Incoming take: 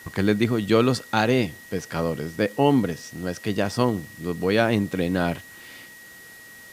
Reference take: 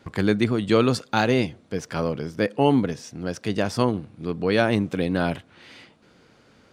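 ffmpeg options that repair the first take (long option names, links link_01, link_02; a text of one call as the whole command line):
ffmpeg -i in.wav -af "adeclick=threshold=4,bandreject=frequency=1900:width=30,afwtdn=0.0035" out.wav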